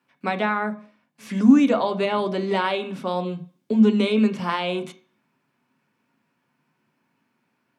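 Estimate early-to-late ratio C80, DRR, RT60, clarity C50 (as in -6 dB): 19.5 dB, 5.5 dB, 0.45 s, 15.0 dB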